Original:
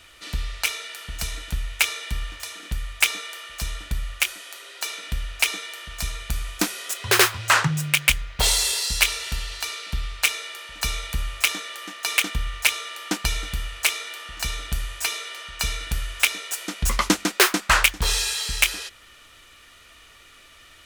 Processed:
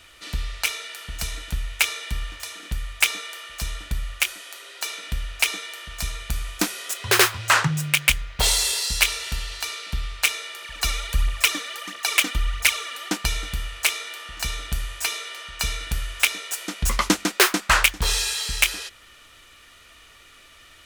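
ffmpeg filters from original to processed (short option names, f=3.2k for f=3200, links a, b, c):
-filter_complex "[0:a]asettb=1/sr,asplit=3[a][b][c];[a]atrim=end=10.624[d];[b]atrim=start=10.62:end=13.09,asetpts=PTS-STARTPTS,afade=t=in:d=0.004:c=qsin,afade=t=out:st=2.466:d=0.004:c=qsin,aphaser=in_gain=1:out_gain=1:delay=4.2:decay=0.57:speed=1.5:type=triangular[e];[c]atrim=start=13.086[f];[d][e]acrossfade=d=0.004:c1=hsin:c2=qsin[g];[g][f]acrossfade=d=0.004:c1=qsin:c2=hsin"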